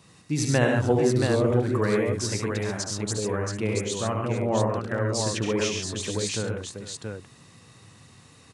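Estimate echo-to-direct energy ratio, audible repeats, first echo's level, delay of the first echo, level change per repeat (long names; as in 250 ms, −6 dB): 0.5 dB, 4, −5.5 dB, 72 ms, repeats not evenly spaced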